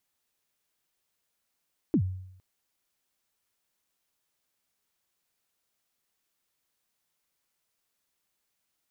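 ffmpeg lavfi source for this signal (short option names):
-f lavfi -i "aevalsrc='0.126*pow(10,-3*t/0.75)*sin(2*PI*(360*0.076/log(93/360)*(exp(log(93/360)*min(t,0.076)/0.076)-1)+93*max(t-0.076,0)))':d=0.46:s=44100"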